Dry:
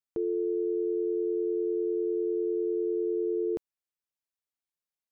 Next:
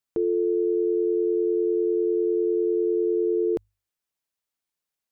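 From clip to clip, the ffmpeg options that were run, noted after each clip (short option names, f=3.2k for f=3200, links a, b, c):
-af "bandreject=f=50:t=h:w=6,bandreject=f=100:t=h:w=6,volume=6dB"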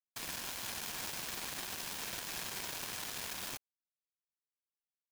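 -af "aeval=exprs='(mod(37.6*val(0)+1,2)-1)/37.6':c=same,afftfilt=real='hypot(re,im)*cos(2*PI*random(0))':imag='hypot(re,im)*sin(2*PI*random(1))':win_size=512:overlap=0.75,acrusher=bits=5:mix=0:aa=0.5,volume=3.5dB"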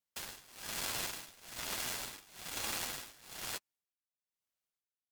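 -af "tremolo=f=1.1:d=0.93,flanger=delay=8.5:depth=2.3:regen=-13:speed=1.2:shape=sinusoidal,aeval=exprs='val(0)*sin(2*PI*1800*n/s)':c=same,volume=10.5dB"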